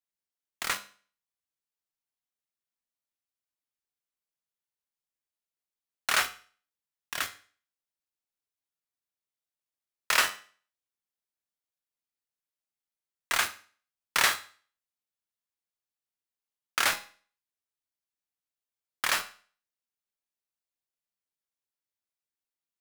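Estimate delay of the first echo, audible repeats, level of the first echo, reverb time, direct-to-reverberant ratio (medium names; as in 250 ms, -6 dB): no echo, no echo, no echo, 0.40 s, 8.5 dB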